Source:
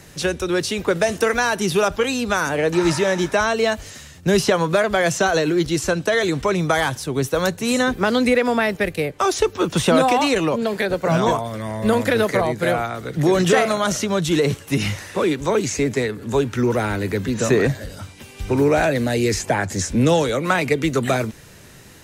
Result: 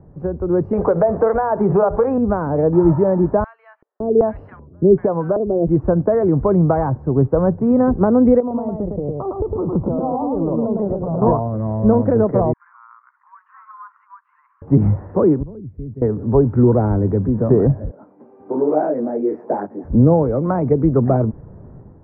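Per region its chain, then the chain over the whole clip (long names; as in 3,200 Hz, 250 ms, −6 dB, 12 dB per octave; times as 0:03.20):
0:00.73–0:02.18: flat-topped bell 1,100 Hz +11 dB 2.8 octaves + mains-hum notches 60/120/180/240/300/360/420 Hz + downward compressor 3 to 1, threshold −16 dBFS
0:03.44–0:05.67: low-shelf EQ 210 Hz −8 dB + multiband delay without the direct sound highs, lows 560 ms, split 1,600 Hz + auto-filter low-pass square 1.3 Hz 380–3,600 Hz
0:08.40–0:11.22: downward compressor 12 to 1, threshold −24 dBFS + Savitzky-Golay smoothing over 65 samples + single-tap delay 108 ms −3 dB
0:12.53–0:14.62: downward compressor 3 to 1, threshold −26 dBFS + Butterworth high-pass 1,000 Hz 96 dB per octave + high-frequency loss of the air 340 metres
0:15.43–0:16.02: guitar amp tone stack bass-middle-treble 10-0-1 + one half of a high-frequency compander encoder only
0:17.91–0:19.85: high-pass filter 260 Hz 24 dB per octave + single-tap delay 282 ms −24 dB + micro pitch shift up and down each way 40 cents
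whole clip: inverse Chebyshev low-pass filter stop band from 3,300 Hz, stop band 60 dB; automatic gain control gain up to 9 dB; low-shelf EQ 270 Hz +8.5 dB; level −4.5 dB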